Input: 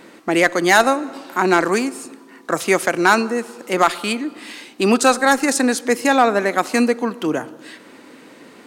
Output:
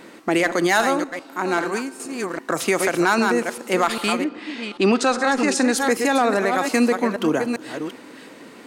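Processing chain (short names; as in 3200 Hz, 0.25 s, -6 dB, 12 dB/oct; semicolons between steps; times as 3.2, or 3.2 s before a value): reverse delay 0.398 s, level -9 dB; 1.04–2 resonator 310 Hz, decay 0.9 s, mix 60%; 4.23–5.72 LPF 3600 Hz -> 7300 Hz 12 dB/oct; maximiser +9 dB; gain -8.5 dB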